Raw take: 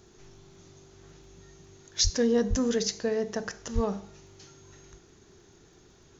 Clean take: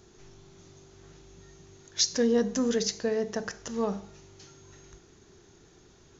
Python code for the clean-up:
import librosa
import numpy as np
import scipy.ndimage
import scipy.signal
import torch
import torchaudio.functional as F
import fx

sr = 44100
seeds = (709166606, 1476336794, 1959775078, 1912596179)

y = fx.fix_declick_ar(x, sr, threshold=6.5)
y = fx.fix_deplosive(y, sr, at_s=(2.03, 2.49, 3.74))